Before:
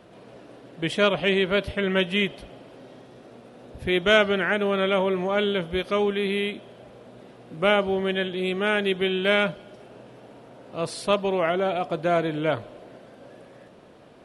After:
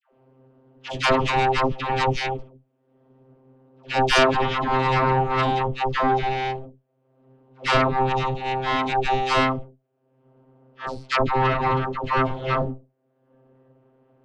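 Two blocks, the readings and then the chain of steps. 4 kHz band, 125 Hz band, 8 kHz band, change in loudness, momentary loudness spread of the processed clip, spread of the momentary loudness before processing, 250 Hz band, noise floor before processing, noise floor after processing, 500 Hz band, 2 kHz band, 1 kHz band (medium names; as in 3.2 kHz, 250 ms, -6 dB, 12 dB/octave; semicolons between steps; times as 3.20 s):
-1.0 dB, +6.5 dB, no reading, +1.5 dB, 11 LU, 10 LU, -1.5 dB, -50 dBFS, -69 dBFS, -2.5 dB, 0.0 dB, +9.0 dB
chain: gate -39 dBFS, range -27 dB; level-controlled noise filter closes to 2.5 kHz, open at -19 dBFS; peaking EQ 140 Hz -5.5 dB 0.45 oct; upward compressor, threshold -30 dBFS; vocoder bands 32, saw 131 Hz; Chebyshev shaper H 3 -11 dB, 5 -34 dB, 6 -10 dB, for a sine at -10 dBFS; phase dispersion lows, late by 109 ms, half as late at 780 Hz; trim +4 dB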